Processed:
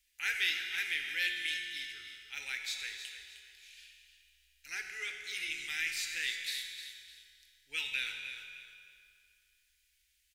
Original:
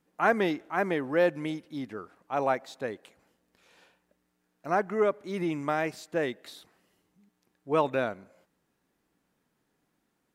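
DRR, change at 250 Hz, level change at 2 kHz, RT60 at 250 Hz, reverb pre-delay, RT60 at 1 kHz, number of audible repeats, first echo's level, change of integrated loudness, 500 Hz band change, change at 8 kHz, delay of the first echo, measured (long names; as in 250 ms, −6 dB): 2.0 dB, −32.0 dB, +1.0 dB, 2.0 s, 5 ms, 2.3 s, 3, −11.5 dB, −6.0 dB, −33.5 dB, +9.5 dB, 308 ms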